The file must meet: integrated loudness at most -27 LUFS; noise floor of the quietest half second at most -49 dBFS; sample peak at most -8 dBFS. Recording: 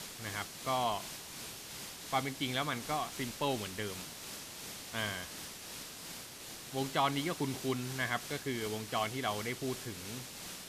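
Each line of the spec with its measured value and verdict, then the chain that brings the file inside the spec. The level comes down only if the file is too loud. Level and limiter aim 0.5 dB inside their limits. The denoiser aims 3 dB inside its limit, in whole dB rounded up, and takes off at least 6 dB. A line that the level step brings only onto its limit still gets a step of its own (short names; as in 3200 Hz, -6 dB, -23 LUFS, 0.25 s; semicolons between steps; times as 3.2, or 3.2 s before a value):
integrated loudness -37.5 LUFS: OK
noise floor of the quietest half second -48 dBFS: fail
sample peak -19.5 dBFS: OK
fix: denoiser 6 dB, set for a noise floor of -48 dBFS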